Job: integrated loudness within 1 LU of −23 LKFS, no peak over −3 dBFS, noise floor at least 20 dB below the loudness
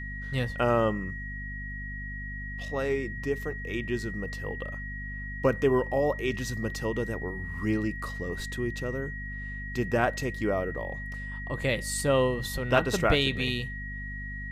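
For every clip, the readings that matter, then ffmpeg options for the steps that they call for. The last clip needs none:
mains hum 50 Hz; hum harmonics up to 250 Hz; level of the hum −36 dBFS; interfering tone 1,900 Hz; level of the tone −38 dBFS; integrated loudness −30.0 LKFS; sample peak −9.0 dBFS; target loudness −23.0 LKFS
→ -af "bandreject=frequency=50:width_type=h:width=6,bandreject=frequency=100:width_type=h:width=6,bandreject=frequency=150:width_type=h:width=6,bandreject=frequency=200:width_type=h:width=6,bandreject=frequency=250:width_type=h:width=6"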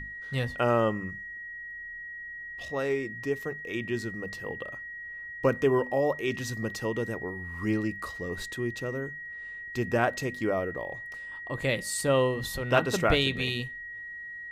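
mains hum none found; interfering tone 1,900 Hz; level of the tone −38 dBFS
→ -af "bandreject=frequency=1900:width=30"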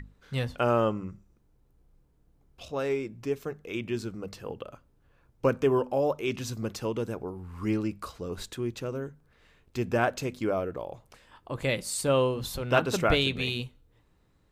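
interfering tone none found; integrated loudness −30.0 LKFS; sample peak −9.0 dBFS; target loudness −23.0 LKFS
→ -af "volume=7dB,alimiter=limit=-3dB:level=0:latency=1"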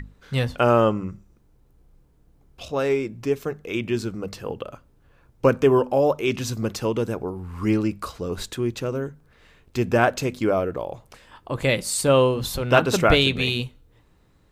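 integrated loudness −23.0 LKFS; sample peak −3.0 dBFS; background noise floor −59 dBFS

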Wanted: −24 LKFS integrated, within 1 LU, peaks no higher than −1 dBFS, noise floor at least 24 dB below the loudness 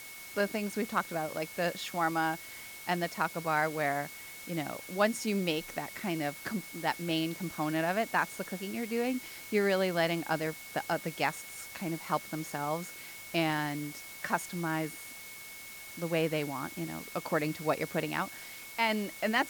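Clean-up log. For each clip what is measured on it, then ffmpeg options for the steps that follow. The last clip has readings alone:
interfering tone 2,200 Hz; level of the tone −48 dBFS; background noise floor −47 dBFS; target noise floor −58 dBFS; integrated loudness −33.5 LKFS; sample peak −14.5 dBFS; target loudness −24.0 LKFS
→ -af "bandreject=frequency=2200:width=30"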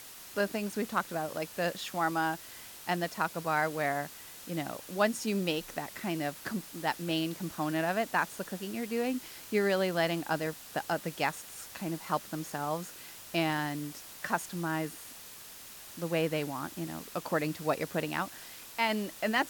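interfering tone none found; background noise floor −49 dBFS; target noise floor −58 dBFS
→ -af "afftdn=noise_reduction=9:noise_floor=-49"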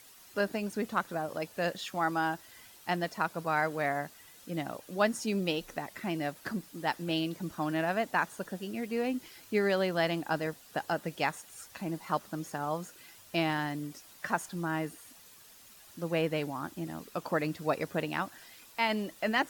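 background noise floor −56 dBFS; target noise floor −58 dBFS
→ -af "afftdn=noise_reduction=6:noise_floor=-56"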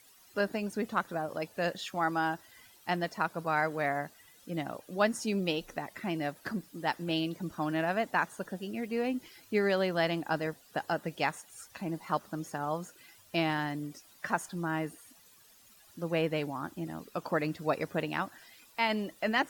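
background noise floor −60 dBFS; integrated loudness −33.5 LKFS; sample peak −14.5 dBFS; target loudness −24.0 LKFS
→ -af "volume=9.5dB"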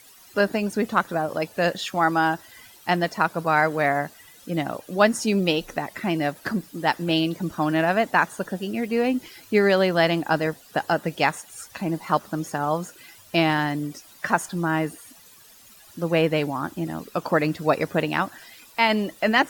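integrated loudness −24.0 LKFS; sample peak −5.0 dBFS; background noise floor −50 dBFS

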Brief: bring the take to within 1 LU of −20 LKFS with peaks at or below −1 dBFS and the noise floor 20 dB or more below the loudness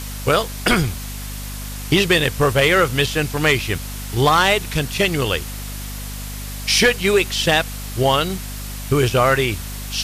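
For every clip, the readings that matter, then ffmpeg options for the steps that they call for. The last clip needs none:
mains hum 50 Hz; hum harmonics up to 250 Hz; level of the hum −28 dBFS; background noise floor −30 dBFS; target noise floor −38 dBFS; integrated loudness −18.0 LKFS; sample peak −4.0 dBFS; target loudness −20.0 LKFS
→ -af "bandreject=frequency=50:width_type=h:width=4,bandreject=frequency=100:width_type=h:width=4,bandreject=frequency=150:width_type=h:width=4,bandreject=frequency=200:width_type=h:width=4,bandreject=frequency=250:width_type=h:width=4"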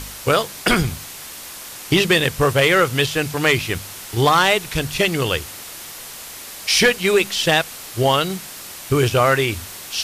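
mains hum none found; background noise floor −36 dBFS; target noise floor −38 dBFS
→ -af "afftdn=noise_reduction=6:noise_floor=-36"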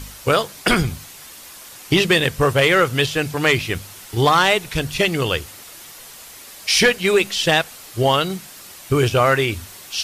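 background noise floor −40 dBFS; integrated loudness −18.0 LKFS; sample peak −4.5 dBFS; target loudness −20.0 LKFS
→ -af "volume=-2dB"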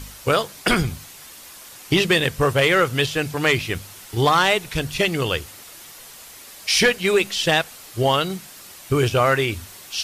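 integrated loudness −20.0 LKFS; sample peak −6.5 dBFS; background noise floor −42 dBFS

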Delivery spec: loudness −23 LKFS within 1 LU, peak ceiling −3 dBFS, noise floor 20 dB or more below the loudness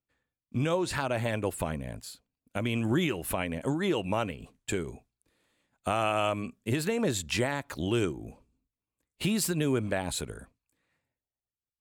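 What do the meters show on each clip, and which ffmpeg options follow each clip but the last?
integrated loudness −30.5 LKFS; sample peak −16.5 dBFS; target loudness −23.0 LKFS
→ -af "volume=7.5dB"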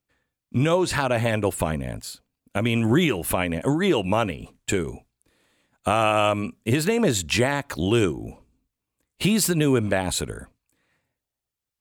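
integrated loudness −23.0 LKFS; sample peak −9.0 dBFS; background noise floor −86 dBFS

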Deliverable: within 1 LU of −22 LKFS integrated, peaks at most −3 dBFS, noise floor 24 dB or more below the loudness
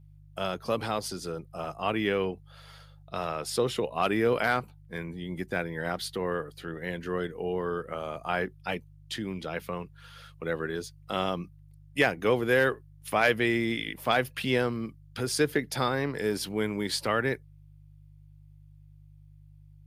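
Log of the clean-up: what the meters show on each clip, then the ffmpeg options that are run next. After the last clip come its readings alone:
mains hum 50 Hz; hum harmonics up to 150 Hz; level of the hum −51 dBFS; integrated loudness −30.0 LKFS; sample peak −9.5 dBFS; target loudness −22.0 LKFS
→ -af "bandreject=frequency=50:width_type=h:width=4,bandreject=frequency=100:width_type=h:width=4,bandreject=frequency=150:width_type=h:width=4"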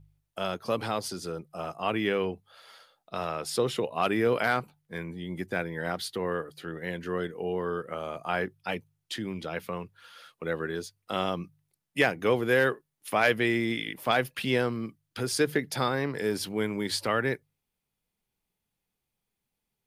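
mains hum none found; integrated loudness −30.0 LKFS; sample peak −9.5 dBFS; target loudness −22.0 LKFS
→ -af "volume=8dB,alimiter=limit=-3dB:level=0:latency=1"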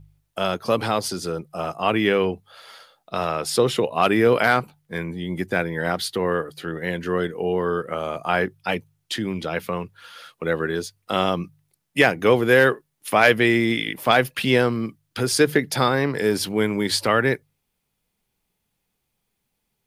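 integrated loudness −22.0 LKFS; sample peak −3.0 dBFS; background noise floor −76 dBFS

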